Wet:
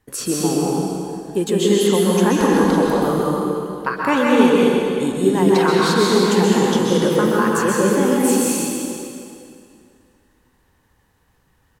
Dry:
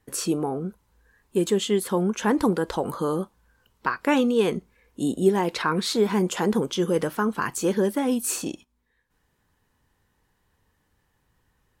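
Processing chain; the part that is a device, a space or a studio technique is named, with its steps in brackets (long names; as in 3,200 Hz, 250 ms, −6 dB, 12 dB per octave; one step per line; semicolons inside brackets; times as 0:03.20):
cave (single-tap delay 321 ms −13.5 dB; convolution reverb RT60 2.5 s, pre-delay 120 ms, DRR −4.5 dB)
level +2 dB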